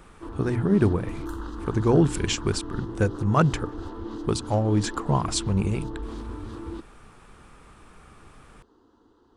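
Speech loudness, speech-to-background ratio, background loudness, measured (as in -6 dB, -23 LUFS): -25.0 LUFS, 12.0 dB, -37.0 LUFS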